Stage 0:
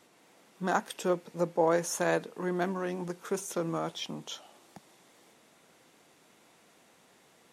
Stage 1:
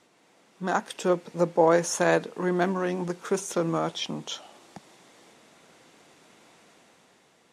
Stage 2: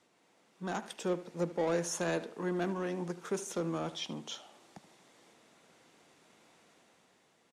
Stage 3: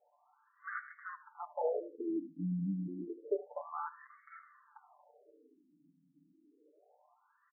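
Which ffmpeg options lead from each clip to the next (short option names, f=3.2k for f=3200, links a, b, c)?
-af "lowpass=9k,dynaudnorm=f=160:g=11:m=6dB"
-filter_complex "[0:a]acrossover=split=450|1900[a][b][c];[b]asoftclip=type=tanh:threshold=-28dB[d];[a][d][c]amix=inputs=3:normalize=0,asplit=2[e][f];[f]adelay=76,lowpass=f=4.5k:p=1,volume=-15dB,asplit=2[g][h];[h]adelay=76,lowpass=f=4.5k:p=1,volume=0.36,asplit=2[i][j];[j]adelay=76,lowpass=f=4.5k:p=1,volume=0.36[k];[e][g][i][k]amix=inputs=4:normalize=0,volume=-7.5dB"
-af "aecho=1:1:6.8:0.89,afftfilt=real='re*between(b*sr/1024,210*pow(1600/210,0.5+0.5*sin(2*PI*0.29*pts/sr))/1.41,210*pow(1600/210,0.5+0.5*sin(2*PI*0.29*pts/sr))*1.41)':imag='im*between(b*sr/1024,210*pow(1600/210,0.5+0.5*sin(2*PI*0.29*pts/sr))/1.41,210*pow(1600/210,0.5+0.5*sin(2*PI*0.29*pts/sr))*1.41)':win_size=1024:overlap=0.75,volume=1.5dB"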